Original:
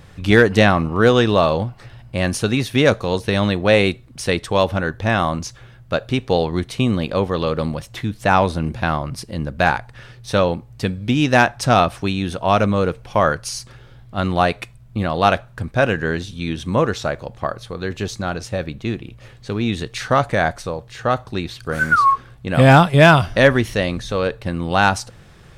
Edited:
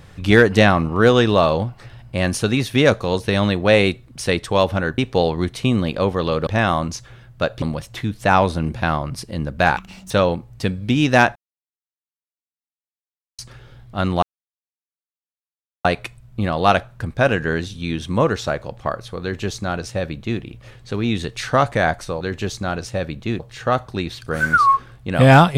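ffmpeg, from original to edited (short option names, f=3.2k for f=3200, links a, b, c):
-filter_complex "[0:a]asplit=11[a][b][c][d][e][f][g][h][i][j][k];[a]atrim=end=4.982[l];[b]atrim=start=6.128:end=7.622[m];[c]atrim=start=4.978:end=6.132[n];[d]atrim=start=7.618:end=9.774[o];[e]atrim=start=9.77:end=10.3,asetpts=PTS-STARTPTS,asetrate=69678,aresample=44100,atrim=end_sample=14793,asetpts=PTS-STARTPTS[p];[f]atrim=start=10.296:end=11.55,asetpts=PTS-STARTPTS,afade=t=out:st=1.25:d=0.004:c=hsin[q];[g]atrim=start=11.55:end=13.58,asetpts=PTS-STARTPTS,volume=0[r];[h]atrim=start=13.58:end=14.42,asetpts=PTS-STARTPTS,afade=t=in:d=0.004:c=hsin,afade=t=out:st=0.836:d=0.004:c=hsin,apad=pad_dur=1.62[s];[i]atrim=start=14.42:end=20.782,asetpts=PTS-STARTPTS,afade=t=in:d=0.004:c=hsin[t];[j]atrim=start=17.788:end=18.982[u];[k]atrim=start=20.778[v];[l][m]acrossfade=d=0.004:c1=hsin:c2=hsin[w];[w][n]acrossfade=d=0.004:c1=hsin:c2=hsin[x];[x][o]acrossfade=d=0.004:c1=hsin:c2=hsin[y];[y][p]acrossfade=d=0.004:c1=hsin:c2=hsin[z];[q][r][s][t]concat=n=4:v=0:a=1[aa];[z][aa]acrossfade=d=0.004:c1=hsin:c2=hsin[ab];[ab][u]acrossfade=d=0.004:c1=hsin:c2=hsin[ac];[ac][v]acrossfade=d=0.004:c1=hsin:c2=hsin"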